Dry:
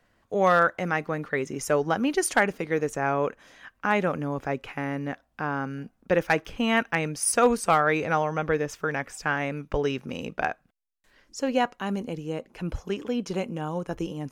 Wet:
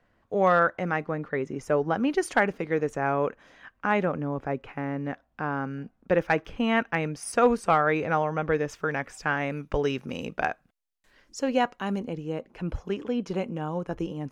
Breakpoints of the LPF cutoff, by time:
LPF 6 dB/oct
2100 Hz
from 1.04 s 1300 Hz
from 1.94 s 2500 Hz
from 4.05 s 1300 Hz
from 5.05 s 2300 Hz
from 8.52 s 4700 Hz
from 9.5 s 12000 Hz
from 11.39 s 5800 Hz
from 11.99 s 2600 Hz

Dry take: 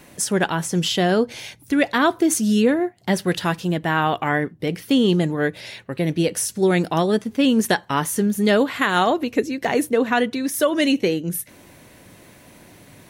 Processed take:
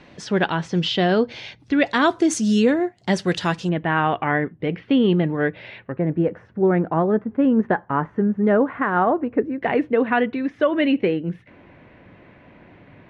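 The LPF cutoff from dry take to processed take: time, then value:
LPF 24 dB/oct
4500 Hz
from 1.86 s 7400 Hz
from 3.69 s 2800 Hz
from 5.92 s 1600 Hz
from 9.62 s 2600 Hz

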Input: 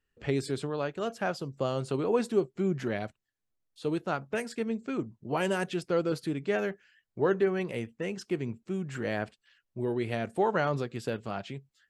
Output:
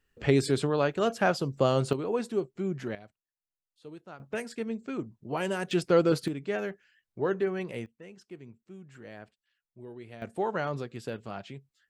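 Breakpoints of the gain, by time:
+6 dB
from 1.93 s -3 dB
from 2.95 s -15 dB
from 4.2 s -2 dB
from 5.71 s +5.5 dB
from 6.28 s -2.5 dB
from 7.86 s -14 dB
from 10.22 s -3.5 dB

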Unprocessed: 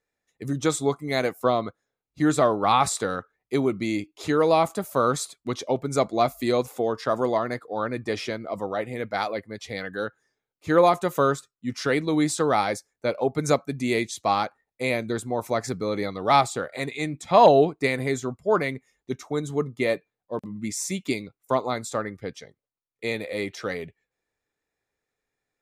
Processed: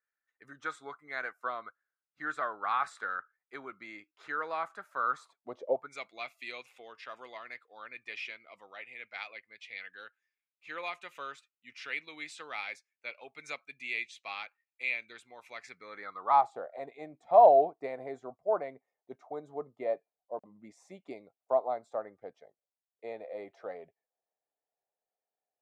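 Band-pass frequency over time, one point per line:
band-pass, Q 4.4
5.07 s 1500 Hz
5.7 s 470 Hz
5.94 s 2500 Hz
15.63 s 2500 Hz
16.6 s 690 Hz

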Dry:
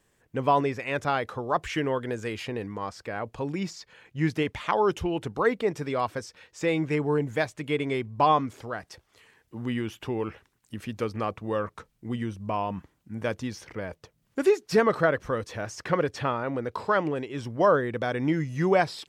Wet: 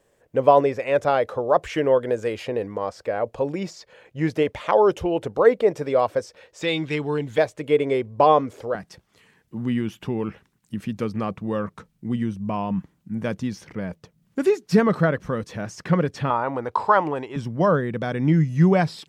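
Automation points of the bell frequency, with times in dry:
bell +13 dB 0.88 oct
550 Hz
from 6.62 s 3600 Hz
from 7.38 s 510 Hz
from 8.75 s 180 Hz
from 16.3 s 900 Hz
from 17.36 s 170 Hz

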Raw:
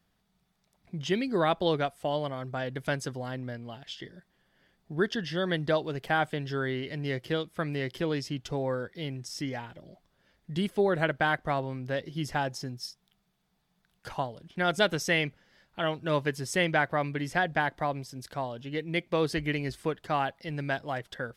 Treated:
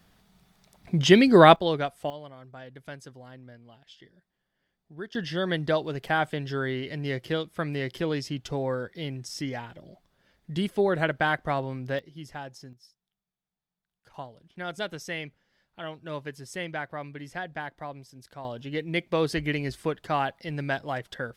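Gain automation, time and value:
+12 dB
from 1.56 s +0.5 dB
from 2.1 s -11 dB
from 5.15 s +1.5 dB
from 11.99 s -9 dB
from 12.73 s -17.5 dB
from 14.14 s -8 dB
from 18.45 s +2 dB

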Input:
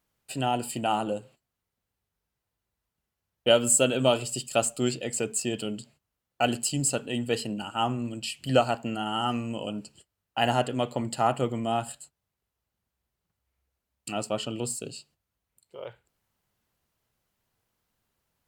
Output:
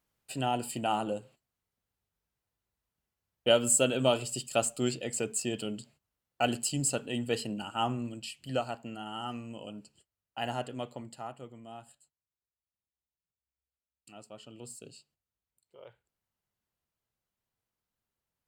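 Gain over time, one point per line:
7.98 s -3.5 dB
8.44 s -10 dB
10.83 s -10 dB
11.36 s -19 dB
14.35 s -19 dB
14.85 s -11.5 dB

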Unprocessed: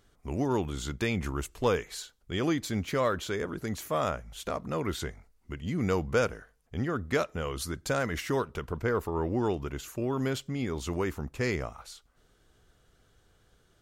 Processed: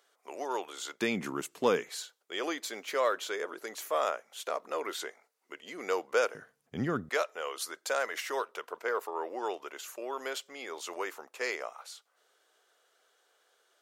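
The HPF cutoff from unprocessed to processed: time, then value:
HPF 24 dB/oct
480 Hz
from 1.01 s 190 Hz
from 1.89 s 420 Hz
from 6.35 s 130 Hz
from 7.09 s 480 Hz

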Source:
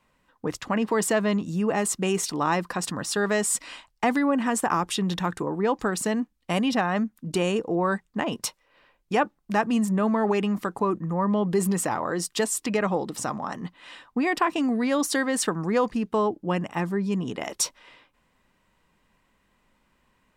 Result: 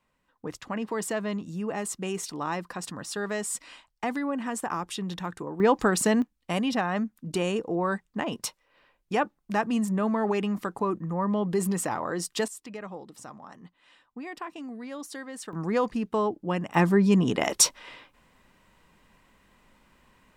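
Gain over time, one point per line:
-7 dB
from 5.6 s +3 dB
from 6.22 s -3 dB
from 12.48 s -14.5 dB
from 15.53 s -2.5 dB
from 16.74 s +6 dB

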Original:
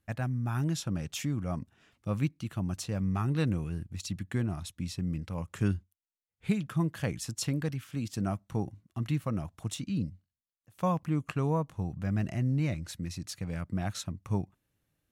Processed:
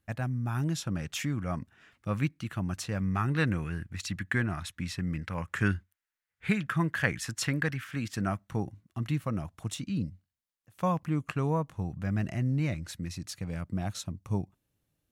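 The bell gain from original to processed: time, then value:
bell 1700 Hz 1.2 oct
0.69 s +1 dB
1.1 s +8.5 dB
3.16 s +8.5 dB
3.64 s +15 dB
8 s +15 dB
8.68 s +3 dB
13.13 s +3 dB
13.99 s -4.5 dB

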